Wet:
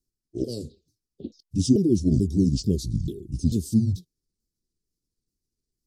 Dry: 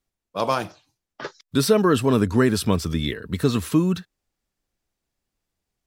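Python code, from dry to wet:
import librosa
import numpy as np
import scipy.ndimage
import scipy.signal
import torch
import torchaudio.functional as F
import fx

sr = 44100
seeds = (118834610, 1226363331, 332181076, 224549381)

y = fx.pitch_ramps(x, sr, semitones=-10.5, every_ms=440)
y = scipy.signal.sosfilt(scipy.signal.ellip(3, 1.0, 50, [400.0, 4700.0], 'bandstop', fs=sr, output='sos'), y)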